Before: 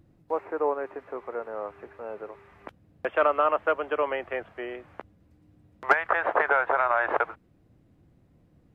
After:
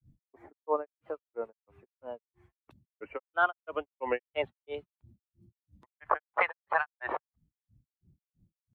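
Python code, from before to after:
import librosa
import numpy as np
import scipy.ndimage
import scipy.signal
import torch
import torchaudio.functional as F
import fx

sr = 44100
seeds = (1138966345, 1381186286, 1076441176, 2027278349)

y = fx.bin_expand(x, sr, power=1.5)
y = fx.rider(y, sr, range_db=5, speed_s=0.5)
y = fx.granulator(y, sr, seeds[0], grain_ms=199.0, per_s=3.0, spray_ms=29.0, spread_st=3)
y = y * librosa.db_to_amplitude(4.0)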